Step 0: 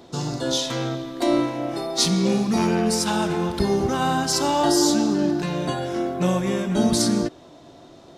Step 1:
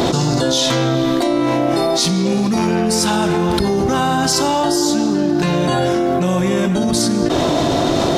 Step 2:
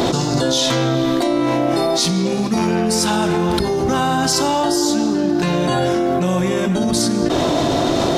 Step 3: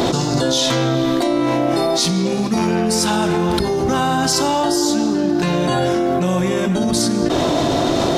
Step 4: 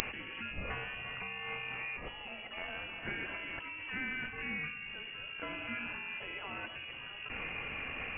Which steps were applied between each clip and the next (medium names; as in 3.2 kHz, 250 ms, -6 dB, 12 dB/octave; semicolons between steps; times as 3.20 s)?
level flattener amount 100%
hum notches 50/100/150/200 Hz; trim -1 dB
no audible change
differentiator; frequency inversion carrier 3.1 kHz; trim -2 dB